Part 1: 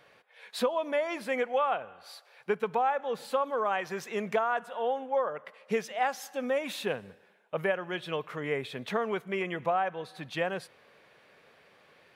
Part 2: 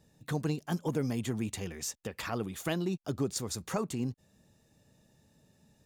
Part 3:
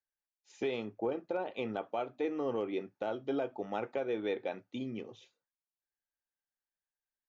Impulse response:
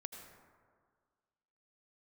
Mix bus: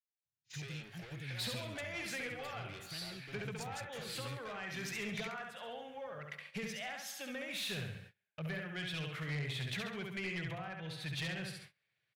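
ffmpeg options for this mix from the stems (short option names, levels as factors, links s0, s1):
-filter_complex "[0:a]acrossover=split=360[s0][s1];[s1]acompressor=threshold=0.0141:ratio=10[s2];[s0][s2]amix=inputs=2:normalize=0,adelay=850,volume=1.19,asplit=2[s3][s4];[s4]volume=0.631[s5];[1:a]adelay=250,volume=0.211[s6];[2:a]acompressor=threshold=0.00447:ratio=2.5,asplit=2[s7][s8];[s8]highpass=f=720:p=1,volume=22.4,asoftclip=type=tanh:threshold=0.0266[s9];[s7][s9]amix=inputs=2:normalize=0,lowpass=f=4400:p=1,volume=0.501,volume=0.531[s10];[s5]aecho=0:1:68|136|204|272|340|408:1|0.43|0.185|0.0795|0.0342|0.0147[s11];[s3][s6][s10][s11]amix=inputs=4:normalize=0,agate=range=0.0501:threshold=0.00282:ratio=16:detection=peak,equalizer=f=125:t=o:w=1:g=10,equalizer=f=250:t=o:w=1:g=-12,equalizer=f=500:t=o:w=1:g=-9,equalizer=f=1000:t=o:w=1:g=-10,equalizer=f=2000:t=o:w=1:g=4,equalizer=f=4000:t=o:w=1:g=3,asoftclip=type=tanh:threshold=0.0211"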